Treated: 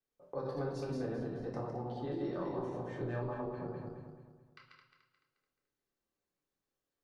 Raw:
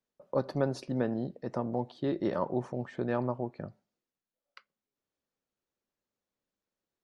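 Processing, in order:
feedback delay that plays each chunk backwards 108 ms, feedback 62%, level −3 dB
downward compressor 2.5 to 1, threshold −34 dBFS, peak gain reduction 8 dB
convolution reverb RT60 0.65 s, pre-delay 3 ms, DRR −2.5 dB
level −7.5 dB

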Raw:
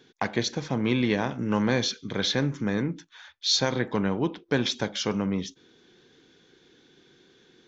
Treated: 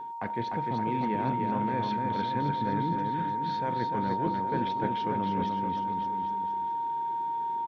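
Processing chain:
reversed playback
downward compressor, threshold −35 dBFS, peak gain reduction 16 dB
reversed playback
high-frequency loss of the air 480 metres
steady tone 930 Hz −41 dBFS
surface crackle 570 per second −67 dBFS
bouncing-ball delay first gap 300 ms, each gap 0.9×, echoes 5
one half of a high-frequency compander decoder only
level +5.5 dB

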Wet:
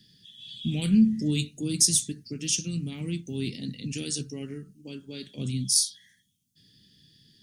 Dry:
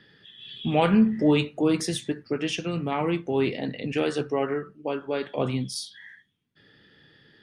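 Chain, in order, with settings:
drawn EQ curve 220 Hz 0 dB, 700 Hz −27 dB, 1,100 Hz −29 dB, 6,300 Hz +15 dB

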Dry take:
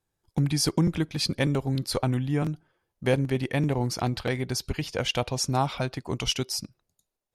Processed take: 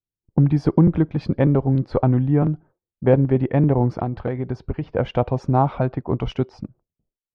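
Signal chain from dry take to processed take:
noise gate with hold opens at −55 dBFS
low-pass that shuts in the quiet parts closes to 360 Hz, open at −23.5 dBFS
low-pass filter 1,000 Hz 12 dB per octave
0:03.97–0:04.95: downward compressor 6 to 1, threshold −29 dBFS, peak gain reduction 7.5 dB
level +8.5 dB

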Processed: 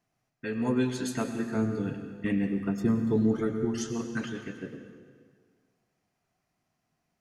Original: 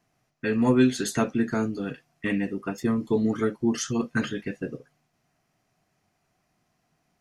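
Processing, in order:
0:01.55–0:03.65: low-shelf EQ 330 Hz +10.5 dB
dense smooth reverb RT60 1.8 s, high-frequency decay 0.85×, pre-delay 85 ms, DRR 7 dB
level −7.5 dB

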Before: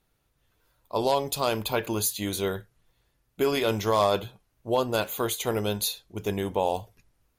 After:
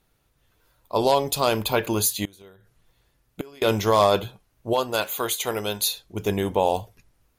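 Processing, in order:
0:02.24–0:03.62: gate with flip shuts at −20 dBFS, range −25 dB
0:04.73–0:05.92: low-shelf EQ 420 Hz −10 dB
level +4.5 dB

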